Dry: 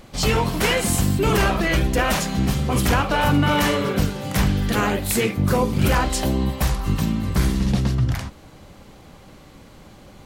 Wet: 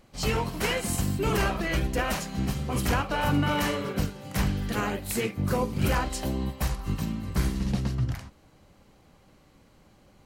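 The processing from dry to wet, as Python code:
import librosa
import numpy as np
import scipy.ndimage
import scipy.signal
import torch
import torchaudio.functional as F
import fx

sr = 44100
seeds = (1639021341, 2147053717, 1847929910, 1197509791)

y = fx.notch(x, sr, hz=3500.0, q=18.0)
y = fx.upward_expand(y, sr, threshold_db=-29.0, expansion=1.5)
y = y * 10.0 ** (-5.5 / 20.0)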